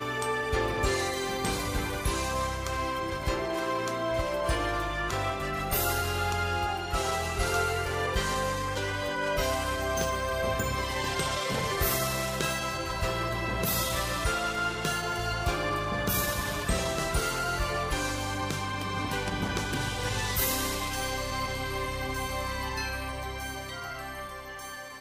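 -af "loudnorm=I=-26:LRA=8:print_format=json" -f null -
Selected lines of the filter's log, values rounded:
"input_i" : "-30.2",
"input_tp" : "-14.4",
"input_lra" : "6.0",
"input_thresh" : "-40.2",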